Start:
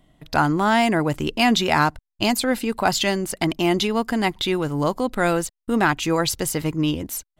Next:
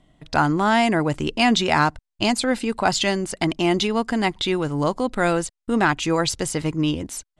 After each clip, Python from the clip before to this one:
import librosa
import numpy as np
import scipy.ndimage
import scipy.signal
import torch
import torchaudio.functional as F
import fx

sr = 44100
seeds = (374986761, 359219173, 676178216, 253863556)

y = scipy.signal.sosfilt(scipy.signal.butter(6, 9800.0, 'lowpass', fs=sr, output='sos'), x)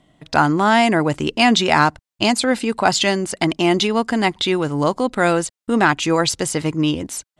y = fx.highpass(x, sr, hz=120.0, slope=6)
y = F.gain(torch.from_numpy(y), 4.0).numpy()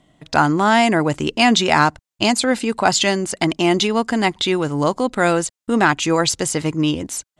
y = fx.peak_eq(x, sr, hz=6900.0, db=3.5, octaves=0.45)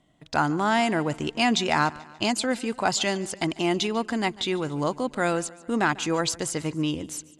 y = fx.echo_feedback(x, sr, ms=145, feedback_pct=53, wet_db=-20.5)
y = F.gain(torch.from_numpy(y), -8.0).numpy()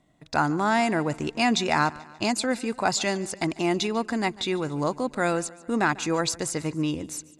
y = fx.notch(x, sr, hz=3100.0, q=5.8)